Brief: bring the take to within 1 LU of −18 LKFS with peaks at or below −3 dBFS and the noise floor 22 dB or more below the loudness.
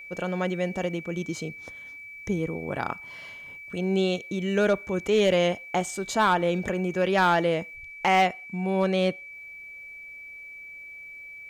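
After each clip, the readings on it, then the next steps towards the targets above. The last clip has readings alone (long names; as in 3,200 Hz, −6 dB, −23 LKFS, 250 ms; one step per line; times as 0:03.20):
share of clipped samples 0.3%; peaks flattened at −14.5 dBFS; interfering tone 2,300 Hz; level of the tone −40 dBFS; integrated loudness −26.0 LKFS; sample peak −14.5 dBFS; target loudness −18.0 LKFS
→ clipped peaks rebuilt −14.5 dBFS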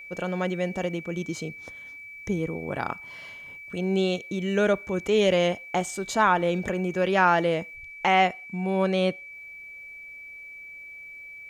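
share of clipped samples 0.0%; interfering tone 2,300 Hz; level of the tone −40 dBFS
→ notch filter 2,300 Hz, Q 30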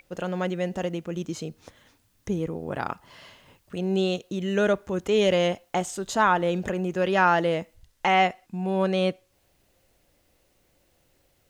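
interfering tone none found; integrated loudness −25.5 LKFS; sample peak −8.0 dBFS; target loudness −18.0 LKFS
→ level +7.5 dB
brickwall limiter −3 dBFS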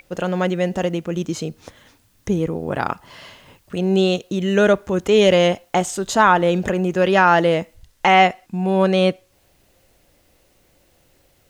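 integrated loudness −18.5 LKFS; sample peak −3.0 dBFS; background noise floor −59 dBFS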